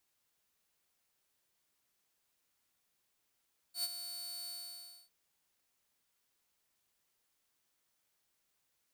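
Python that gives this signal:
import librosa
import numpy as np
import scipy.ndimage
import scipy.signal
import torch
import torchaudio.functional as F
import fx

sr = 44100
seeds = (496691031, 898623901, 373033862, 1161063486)

y = fx.adsr_tone(sr, wave='saw', hz=4480.0, attack_ms=97.0, decay_ms=37.0, sustain_db=-10.0, held_s=0.74, release_ms=614.0, level_db=-29.5)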